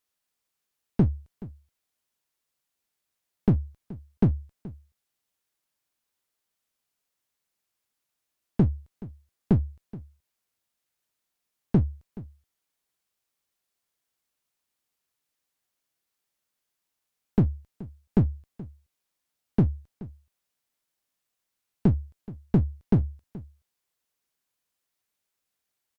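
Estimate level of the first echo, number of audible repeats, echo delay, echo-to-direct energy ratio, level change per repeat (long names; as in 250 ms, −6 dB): −19.0 dB, 1, 426 ms, −19.0 dB, repeats not evenly spaced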